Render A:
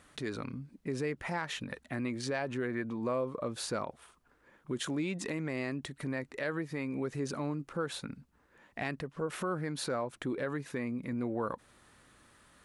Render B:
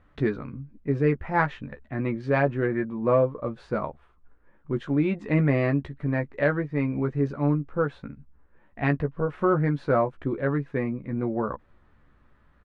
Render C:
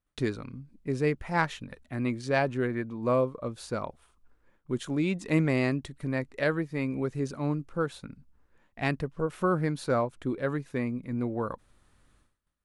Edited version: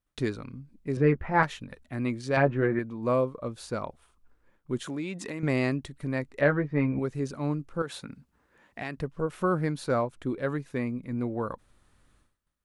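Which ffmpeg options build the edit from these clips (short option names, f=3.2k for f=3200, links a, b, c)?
-filter_complex "[1:a]asplit=3[a][b][c];[0:a]asplit=2[d][e];[2:a]asplit=6[f][g][h][i][j][k];[f]atrim=end=0.972[l];[a]atrim=start=0.968:end=1.432[m];[g]atrim=start=1.428:end=2.372[n];[b]atrim=start=2.368:end=2.792[o];[h]atrim=start=2.788:end=4.852[p];[d]atrim=start=4.848:end=5.432[q];[i]atrim=start=5.428:end=6.412[r];[c]atrim=start=6.408:end=6.992[s];[j]atrim=start=6.988:end=7.822[t];[e]atrim=start=7.818:end=8.972[u];[k]atrim=start=8.968[v];[l][m]acrossfade=d=0.004:c1=hsin:c2=hsin[w];[w][n]acrossfade=d=0.004:c1=hsin:c2=hsin[x];[x][o]acrossfade=d=0.004:c1=hsin:c2=hsin[y];[y][p]acrossfade=d=0.004:c1=hsin:c2=hsin[z];[z][q]acrossfade=d=0.004:c1=hsin:c2=hsin[aa];[aa][r]acrossfade=d=0.004:c1=hsin:c2=hsin[ab];[ab][s]acrossfade=d=0.004:c1=hsin:c2=hsin[ac];[ac][t]acrossfade=d=0.004:c1=hsin:c2=hsin[ad];[ad][u]acrossfade=d=0.004:c1=hsin:c2=hsin[ae];[ae][v]acrossfade=d=0.004:c1=hsin:c2=hsin"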